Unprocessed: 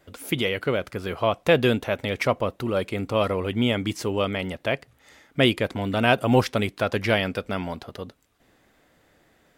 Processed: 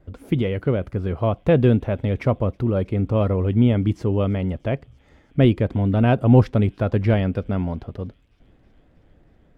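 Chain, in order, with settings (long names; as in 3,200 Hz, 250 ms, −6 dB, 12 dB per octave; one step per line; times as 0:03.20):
spectral tilt −4.5 dB per octave
on a send: delay with a high-pass on its return 320 ms, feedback 77%, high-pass 4,000 Hz, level −22 dB
on the sum: level −3.5 dB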